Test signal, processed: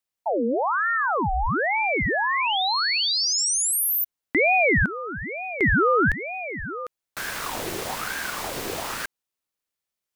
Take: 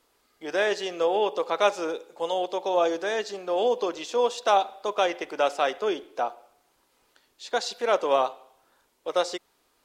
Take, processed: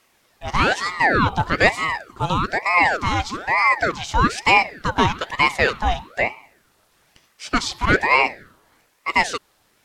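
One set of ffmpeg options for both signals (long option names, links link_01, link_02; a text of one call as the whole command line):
ffmpeg -i in.wav -af "acontrast=64,aeval=exprs='val(0)*sin(2*PI*980*n/s+980*0.65/1.1*sin(2*PI*1.1*n/s))':channel_layout=same,volume=3dB" out.wav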